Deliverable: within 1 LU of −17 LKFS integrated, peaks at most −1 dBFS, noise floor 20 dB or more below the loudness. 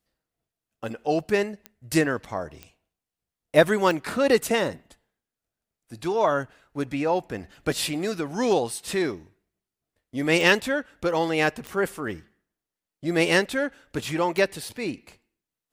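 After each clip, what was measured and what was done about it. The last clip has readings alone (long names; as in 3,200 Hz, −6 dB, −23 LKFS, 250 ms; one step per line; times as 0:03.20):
number of clicks 6; integrated loudness −25.0 LKFS; sample peak −4.5 dBFS; target loudness −17.0 LKFS
→ click removal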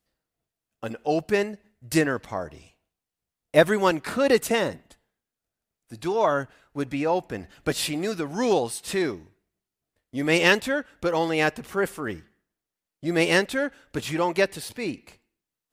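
number of clicks 0; integrated loudness −25.0 LKFS; sample peak −4.5 dBFS; target loudness −17.0 LKFS
→ level +8 dB
brickwall limiter −1 dBFS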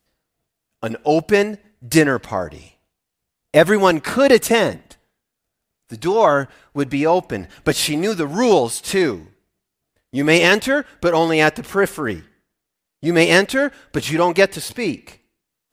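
integrated loudness −17.5 LKFS; sample peak −1.0 dBFS; background noise floor −80 dBFS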